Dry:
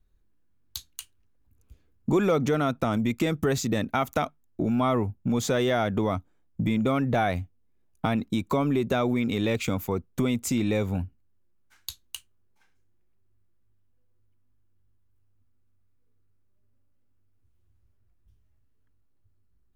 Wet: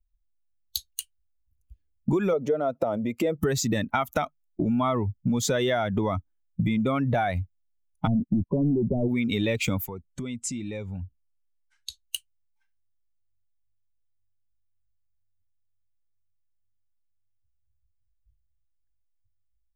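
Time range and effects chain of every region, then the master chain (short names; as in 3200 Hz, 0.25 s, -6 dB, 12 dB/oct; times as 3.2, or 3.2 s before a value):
2.33–3.38 compressor 2.5:1, threshold -33 dBFS + HPF 54 Hz + bell 540 Hz +14.5 dB 1.3 oct
8.07–9.08 sample leveller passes 3 + Gaussian blur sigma 16 samples
9.86–12.04 LPF 9800 Hz 24 dB/oct + compressor 2:1, threshold -37 dBFS
whole clip: per-bin expansion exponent 1.5; compressor, threshold -30 dBFS; gain +8.5 dB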